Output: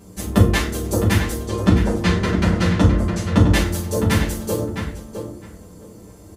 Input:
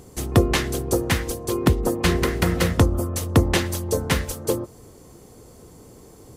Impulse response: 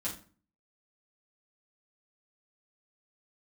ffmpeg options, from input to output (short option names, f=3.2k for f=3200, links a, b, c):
-filter_complex "[0:a]asettb=1/sr,asplit=3[a][b][c];[a]atrim=end=1.364[d];[b]atrim=start=1.36:end=3.48,asetpts=PTS-STARTPTS,afade=t=in:d=0.004:c=qsin,afade=t=out:st=2.116:d=0.004:c=qsin,lowpass=6.3k[e];[c]atrim=start=3.476[f];[d][e]acrossfade=d=0.004:c1=hsin:c2=qsin[g];[g][f]acrossfade=d=0.004:c1=qsin:c2=hsin,asplit=2[h][i];[i]adelay=660,lowpass=f=3.2k:p=1,volume=-7dB,asplit=2[j][k];[k]adelay=660,lowpass=f=3.2k:p=1,volume=0.17,asplit=2[l][m];[m]adelay=660,lowpass=f=3.2k:p=1,volume=0.17[n];[h][j][l][n]amix=inputs=4:normalize=0[o];[1:a]atrim=start_sample=2205[p];[o][p]afir=irnorm=-1:irlink=0,volume=-1dB"